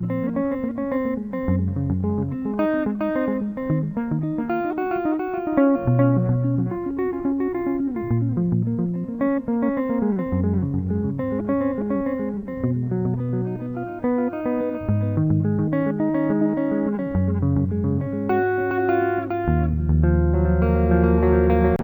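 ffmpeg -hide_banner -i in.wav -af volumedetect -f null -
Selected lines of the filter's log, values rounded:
mean_volume: -21.3 dB
max_volume: -6.1 dB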